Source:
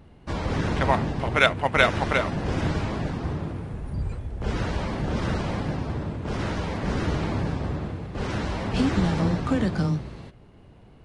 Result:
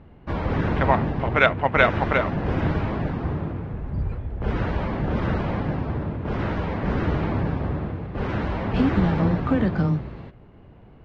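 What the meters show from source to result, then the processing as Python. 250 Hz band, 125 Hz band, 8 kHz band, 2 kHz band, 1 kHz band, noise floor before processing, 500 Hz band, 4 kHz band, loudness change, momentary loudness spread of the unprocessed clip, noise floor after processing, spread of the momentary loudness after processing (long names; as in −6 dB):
+2.5 dB, +2.5 dB, below −15 dB, +1.0 dB, +2.5 dB, −50 dBFS, +2.5 dB, −5.0 dB, +2.0 dB, 11 LU, −48 dBFS, 10 LU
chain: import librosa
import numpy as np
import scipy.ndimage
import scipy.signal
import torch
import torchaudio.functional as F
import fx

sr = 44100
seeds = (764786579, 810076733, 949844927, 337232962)

y = scipy.signal.sosfilt(scipy.signal.butter(2, 2400.0, 'lowpass', fs=sr, output='sos'), x)
y = y * 10.0 ** (2.5 / 20.0)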